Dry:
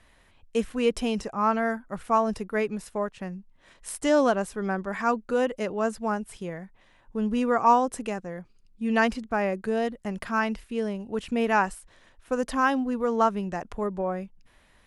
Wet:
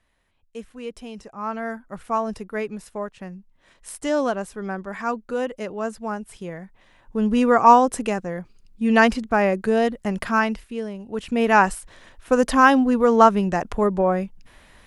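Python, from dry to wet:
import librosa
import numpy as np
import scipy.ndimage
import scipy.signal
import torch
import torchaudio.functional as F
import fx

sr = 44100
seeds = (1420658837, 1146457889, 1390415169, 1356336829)

y = fx.gain(x, sr, db=fx.line((1.09, -10.0), (1.81, -1.0), (6.1, -1.0), (7.43, 7.0), (10.3, 7.0), (10.9, -2.0), (11.72, 9.0)))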